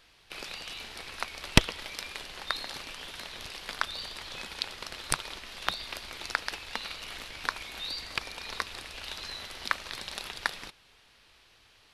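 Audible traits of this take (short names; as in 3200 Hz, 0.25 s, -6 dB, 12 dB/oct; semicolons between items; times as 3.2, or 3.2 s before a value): noise floor -61 dBFS; spectral tilt -2.5 dB/oct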